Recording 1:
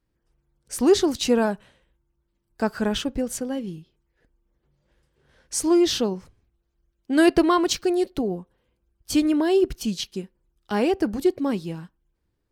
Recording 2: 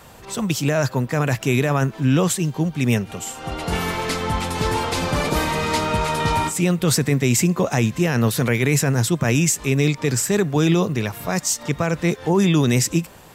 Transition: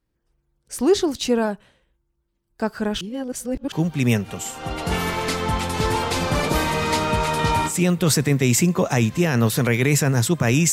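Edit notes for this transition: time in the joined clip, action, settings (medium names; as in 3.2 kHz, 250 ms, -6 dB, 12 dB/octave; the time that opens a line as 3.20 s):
recording 1
3.01–3.72 s: reverse
3.72 s: go over to recording 2 from 2.53 s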